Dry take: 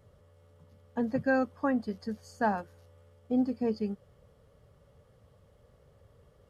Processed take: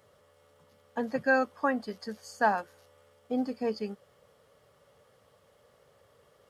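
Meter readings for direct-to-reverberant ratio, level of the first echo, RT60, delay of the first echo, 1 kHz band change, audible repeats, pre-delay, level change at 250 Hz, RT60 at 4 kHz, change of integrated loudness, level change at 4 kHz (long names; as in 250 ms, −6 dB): no reverb audible, no echo audible, no reverb audible, no echo audible, +4.0 dB, no echo audible, no reverb audible, −4.0 dB, no reverb audible, +0.5 dB, +6.5 dB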